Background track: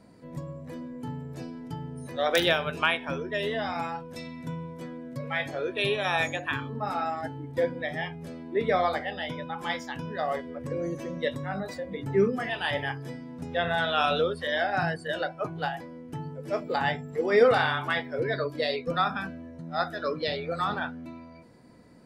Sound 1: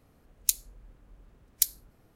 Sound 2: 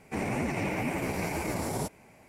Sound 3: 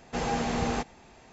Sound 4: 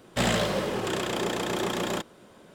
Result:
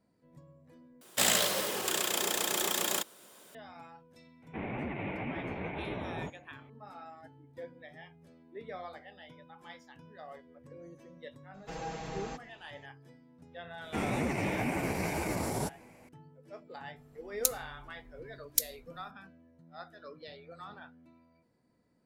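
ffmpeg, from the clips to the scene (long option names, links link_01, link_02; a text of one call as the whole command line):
ffmpeg -i bed.wav -i cue0.wav -i cue1.wav -i cue2.wav -i cue3.wav -filter_complex "[2:a]asplit=2[link_01][link_02];[0:a]volume=-18.5dB[link_03];[4:a]aemphasis=mode=production:type=riaa[link_04];[link_01]aresample=8000,aresample=44100[link_05];[3:a]aecho=1:1:6.2:0.86[link_06];[link_03]asplit=2[link_07][link_08];[link_07]atrim=end=1.014[link_09];[link_04]atrim=end=2.54,asetpts=PTS-STARTPTS,volume=-4.5dB[link_10];[link_08]atrim=start=3.546[link_11];[link_05]atrim=end=2.28,asetpts=PTS-STARTPTS,volume=-6.5dB,afade=type=in:duration=0.004:curve=hsin,afade=type=out:start_time=2.276:duration=0.004:curve=hsin,adelay=4420[link_12];[link_06]atrim=end=1.32,asetpts=PTS-STARTPTS,volume=-14dB,afade=type=in:duration=0.004:curve=hsin,afade=type=out:start_time=1.316:duration=0.004:curve=hsin,adelay=508914S[link_13];[link_02]atrim=end=2.28,asetpts=PTS-STARTPTS,volume=-1.5dB,afade=type=in:duration=0.004:curve=hsin,afade=type=out:start_time=2.276:duration=0.004:curve=hsin,adelay=13810[link_14];[1:a]atrim=end=2.15,asetpts=PTS-STARTPTS,volume=-3.5dB,afade=type=in:duration=0.004:curve=hsin,afade=type=out:start_time=2.146:duration=0.004:curve=hsin,adelay=16960[link_15];[link_09][link_10]acrossfade=duration=0.004:curve1=hsin:curve2=hsin[link_16];[link_16][link_11]acrossfade=duration=0.004:curve1=hsin:curve2=hsin[link_17];[link_17][link_12][link_13][link_14][link_15]amix=inputs=5:normalize=0" out.wav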